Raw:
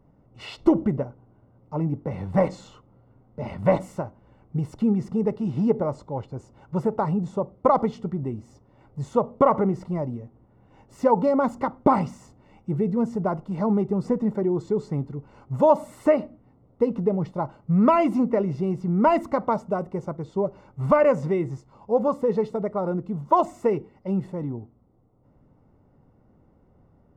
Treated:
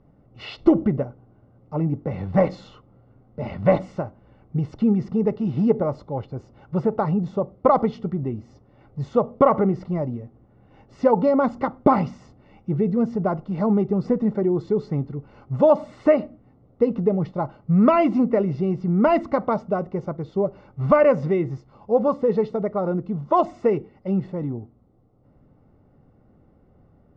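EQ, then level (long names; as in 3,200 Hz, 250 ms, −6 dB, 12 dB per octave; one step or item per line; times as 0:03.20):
low-pass filter 5,100 Hz 24 dB per octave
notch filter 950 Hz, Q 7.9
+2.5 dB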